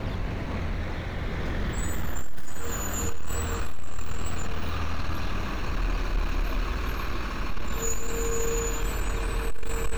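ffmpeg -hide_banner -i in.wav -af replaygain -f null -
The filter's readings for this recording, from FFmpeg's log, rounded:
track_gain = +16.5 dB
track_peak = 0.092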